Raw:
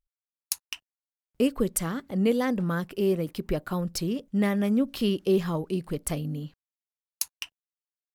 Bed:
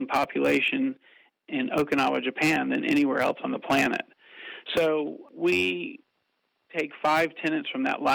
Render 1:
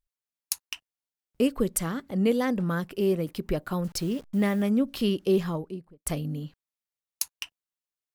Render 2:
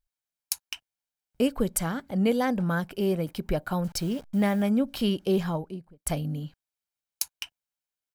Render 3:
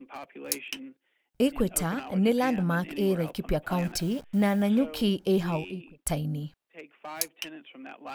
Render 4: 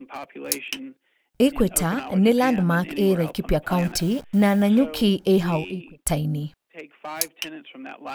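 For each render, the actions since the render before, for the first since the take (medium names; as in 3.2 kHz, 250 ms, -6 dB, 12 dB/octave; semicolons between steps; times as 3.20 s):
3.84–4.63 s: send-on-delta sampling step -45.5 dBFS; 5.35–6.06 s: studio fade out
dynamic bell 820 Hz, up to +3 dB, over -42 dBFS, Q 1; comb 1.3 ms, depth 32%
add bed -17 dB
trim +6 dB; peak limiter -3 dBFS, peak gain reduction 1 dB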